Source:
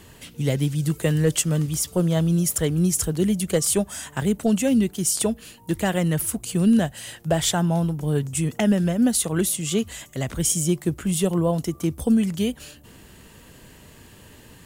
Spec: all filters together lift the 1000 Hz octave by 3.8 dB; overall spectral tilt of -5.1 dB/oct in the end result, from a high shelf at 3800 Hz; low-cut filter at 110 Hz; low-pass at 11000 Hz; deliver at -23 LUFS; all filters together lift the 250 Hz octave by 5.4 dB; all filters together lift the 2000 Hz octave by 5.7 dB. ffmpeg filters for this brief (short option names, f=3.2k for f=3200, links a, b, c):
-af "highpass=110,lowpass=11k,equalizer=f=250:t=o:g=7.5,equalizer=f=1k:t=o:g=3.5,equalizer=f=2k:t=o:g=5,highshelf=f=3.8k:g=3.5,volume=-4.5dB"